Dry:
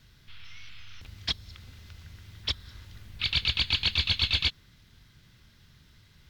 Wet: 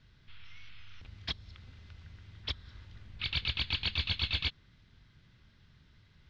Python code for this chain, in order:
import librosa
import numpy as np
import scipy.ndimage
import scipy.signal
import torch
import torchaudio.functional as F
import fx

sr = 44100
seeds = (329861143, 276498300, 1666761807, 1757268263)

y = fx.air_absorb(x, sr, metres=150.0)
y = F.gain(torch.from_numpy(y), -3.5).numpy()